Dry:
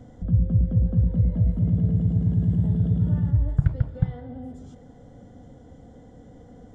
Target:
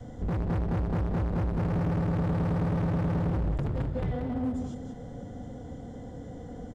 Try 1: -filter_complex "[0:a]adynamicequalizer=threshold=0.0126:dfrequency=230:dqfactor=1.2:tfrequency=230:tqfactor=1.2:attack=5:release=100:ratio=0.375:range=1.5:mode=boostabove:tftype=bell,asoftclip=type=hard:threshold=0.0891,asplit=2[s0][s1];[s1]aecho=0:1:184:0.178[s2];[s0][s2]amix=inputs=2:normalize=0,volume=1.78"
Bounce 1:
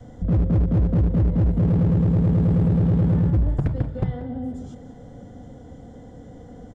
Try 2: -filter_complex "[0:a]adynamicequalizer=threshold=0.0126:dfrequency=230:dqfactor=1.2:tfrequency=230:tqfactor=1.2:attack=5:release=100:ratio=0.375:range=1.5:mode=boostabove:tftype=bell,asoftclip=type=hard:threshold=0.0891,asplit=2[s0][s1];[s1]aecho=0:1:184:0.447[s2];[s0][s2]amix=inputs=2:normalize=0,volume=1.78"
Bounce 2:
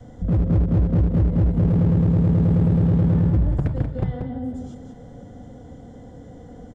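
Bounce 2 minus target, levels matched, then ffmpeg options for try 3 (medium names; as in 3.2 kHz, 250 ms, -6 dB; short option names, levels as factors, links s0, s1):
hard clipper: distortion -5 dB
-filter_complex "[0:a]adynamicequalizer=threshold=0.0126:dfrequency=230:dqfactor=1.2:tfrequency=230:tqfactor=1.2:attack=5:release=100:ratio=0.375:range=1.5:mode=boostabove:tftype=bell,asoftclip=type=hard:threshold=0.0237,asplit=2[s0][s1];[s1]aecho=0:1:184:0.447[s2];[s0][s2]amix=inputs=2:normalize=0,volume=1.78"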